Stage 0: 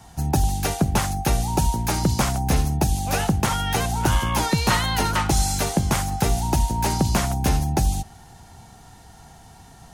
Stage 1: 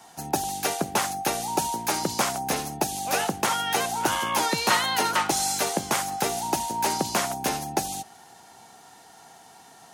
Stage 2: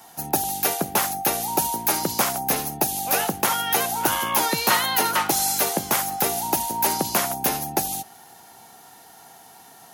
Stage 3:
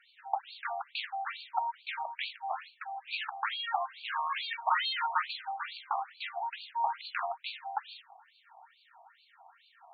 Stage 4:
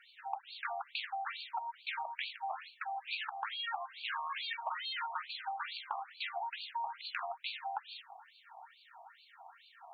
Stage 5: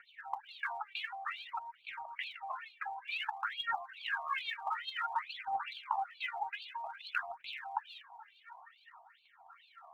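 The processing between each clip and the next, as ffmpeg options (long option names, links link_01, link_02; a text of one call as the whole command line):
ffmpeg -i in.wav -af "highpass=340" out.wav
ffmpeg -i in.wav -af "aexciter=amount=5.4:drive=2:freq=11000,volume=1.5dB" out.wav
ffmpeg -i in.wav -af "afftfilt=real='re*between(b*sr/1024,850*pow(3300/850,0.5+0.5*sin(2*PI*2.3*pts/sr))/1.41,850*pow(3300/850,0.5+0.5*sin(2*PI*2.3*pts/sr))*1.41)':imag='im*between(b*sr/1024,850*pow(3300/850,0.5+0.5*sin(2*PI*2.3*pts/sr))/1.41,850*pow(3300/850,0.5+0.5*sin(2*PI*2.3*pts/sr))*1.41)':win_size=1024:overlap=0.75,volume=-4dB" out.wav
ffmpeg -i in.wav -af "acompressor=threshold=-38dB:ratio=12,volume=2.5dB" out.wav
ffmpeg -i in.wav -af "highpass=640,lowpass=2600,aphaser=in_gain=1:out_gain=1:delay=2.6:decay=0.72:speed=0.54:type=triangular" out.wav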